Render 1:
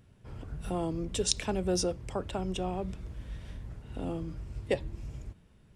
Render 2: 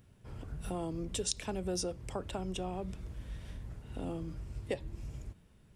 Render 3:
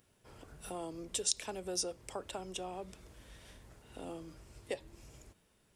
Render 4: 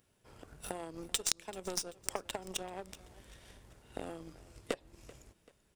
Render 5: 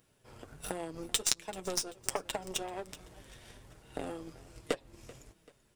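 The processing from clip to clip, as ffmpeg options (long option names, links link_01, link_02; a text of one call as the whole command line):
ffmpeg -i in.wav -af "highshelf=frequency=9000:gain=7.5,acompressor=threshold=-33dB:ratio=2,volume=-2dB" out.wav
ffmpeg -i in.wav -af "bass=frequency=250:gain=-13,treble=frequency=4000:gain=5,volume=-1.5dB" out.wav
ffmpeg -i in.wav -af "acompressor=threshold=-43dB:ratio=5,aeval=exprs='0.0631*(cos(1*acos(clip(val(0)/0.0631,-1,1)))-cos(1*PI/2))+0.0178*(cos(2*acos(clip(val(0)/0.0631,-1,1)))-cos(2*PI/2))+0.00794*(cos(7*acos(clip(val(0)/0.0631,-1,1)))-cos(7*PI/2))+0.000447*(cos(8*acos(clip(val(0)/0.0631,-1,1)))-cos(8*PI/2))':channel_layout=same,aecho=1:1:386|772|1158:0.1|0.042|0.0176,volume=16dB" out.wav
ffmpeg -i in.wav -af "flanger=delay=6.2:depth=2.4:regen=-32:speed=1.3:shape=sinusoidal,volume=7dB" out.wav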